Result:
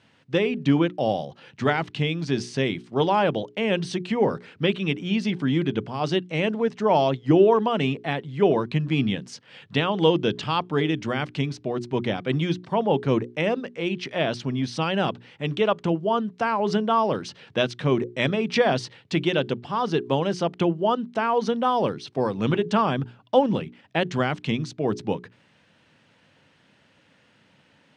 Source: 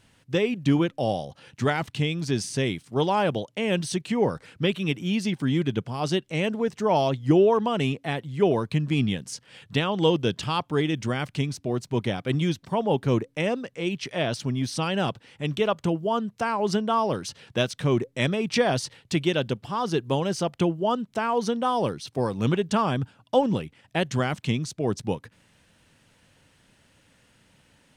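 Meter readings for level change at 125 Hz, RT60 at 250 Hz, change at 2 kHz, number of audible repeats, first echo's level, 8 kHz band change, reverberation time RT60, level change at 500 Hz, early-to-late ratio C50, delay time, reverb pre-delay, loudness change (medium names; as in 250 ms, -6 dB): -0.5 dB, no reverb, +2.0 dB, no echo, no echo, -6.5 dB, no reverb, +2.0 dB, no reverb, no echo, no reverb, +1.5 dB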